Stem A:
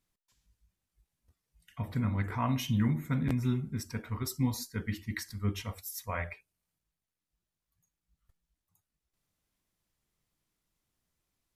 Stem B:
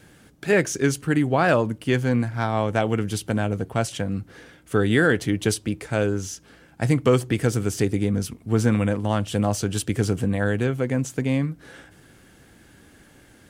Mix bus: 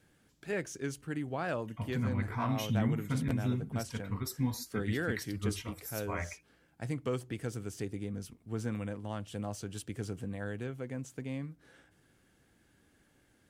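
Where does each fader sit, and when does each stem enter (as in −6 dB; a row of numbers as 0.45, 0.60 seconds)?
−2.5, −16.0 decibels; 0.00, 0.00 seconds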